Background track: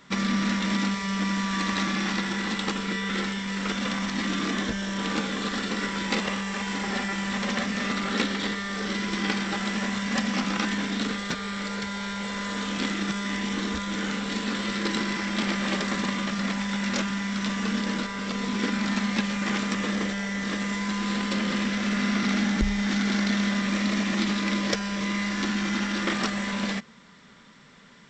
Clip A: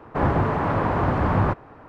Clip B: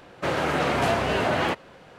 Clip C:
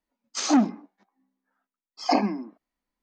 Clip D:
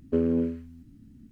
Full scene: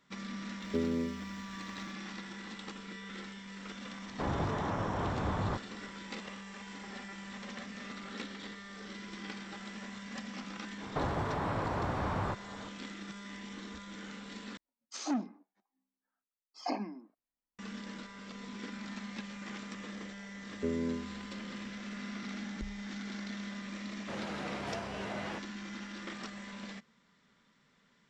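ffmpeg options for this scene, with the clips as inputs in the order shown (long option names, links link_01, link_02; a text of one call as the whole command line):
ffmpeg -i bed.wav -i cue0.wav -i cue1.wav -i cue2.wav -i cue3.wav -filter_complex "[4:a]asplit=2[link_01][link_02];[1:a]asplit=2[link_03][link_04];[0:a]volume=-16.5dB[link_05];[link_01]crystalizer=i=2.5:c=0[link_06];[link_03]alimiter=limit=-13dB:level=0:latency=1:release=71[link_07];[link_04]acrossover=split=440|3400[link_08][link_09][link_10];[link_08]acompressor=threshold=-34dB:ratio=4[link_11];[link_09]acompressor=threshold=-33dB:ratio=5[link_12];[link_10]acompressor=threshold=-56dB:ratio=2[link_13];[link_11][link_12][link_13]amix=inputs=3:normalize=0[link_14];[2:a]lowpass=9400[link_15];[link_05]asplit=2[link_16][link_17];[link_16]atrim=end=14.574[link_18];[3:a]atrim=end=3.02,asetpts=PTS-STARTPTS,volume=-13.5dB[link_19];[link_17]atrim=start=17.586[link_20];[link_06]atrim=end=1.31,asetpts=PTS-STARTPTS,volume=-8.5dB,afade=type=in:duration=0.004:curve=hsin,afade=type=out:start_time=1.306:duration=0.004:curve=hsin,adelay=610[link_21];[link_07]atrim=end=1.88,asetpts=PTS-STARTPTS,volume=-11.5dB,afade=type=in:duration=0.004:curve=hsin,afade=type=out:start_time=1.876:duration=0.004:curve=hsin,adelay=4040[link_22];[link_14]atrim=end=1.88,asetpts=PTS-STARTPTS,volume=-2.5dB,afade=type=in:duration=0.004:curve=hsin,afade=type=out:start_time=1.876:duration=0.004:curve=hsin,adelay=10810[link_23];[link_02]atrim=end=1.31,asetpts=PTS-STARTPTS,volume=-9.5dB,afade=type=in:duration=0.004:curve=hsin,afade=type=out:start_time=1.306:duration=0.004:curve=hsin,adelay=20500[link_24];[link_15]atrim=end=1.98,asetpts=PTS-STARTPTS,volume=-17dB,afade=type=in:duration=0.004:curve=hsin,afade=type=out:start_time=1.976:duration=0.004:curve=hsin,adelay=23850[link_25];[link_18][link_19]acrossfade=duration=0.004:curve1=hsin:curve2=hsin[link_26];[link_26][link_20]acrossfade=duration=0.004:curve1=hsin:curve2=hsin[link_27];[link_27][link_21][link_22][link_23][link_24][link_25]amix=inputs=6:normalize=0" out.wav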